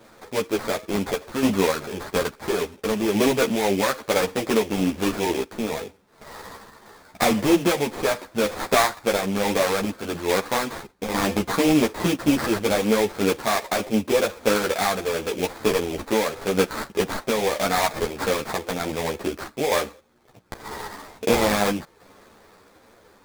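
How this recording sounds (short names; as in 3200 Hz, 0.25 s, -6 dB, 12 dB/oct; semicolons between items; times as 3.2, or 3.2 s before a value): random-step tremolo; aliases and images of a low sample rate 2900 Hz, jitter 20%; a shimmering, thickened sound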